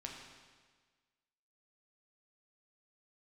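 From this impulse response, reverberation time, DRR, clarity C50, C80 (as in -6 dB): 1.5 s, -0.5 dB, 3.0 dB, 4.5 dB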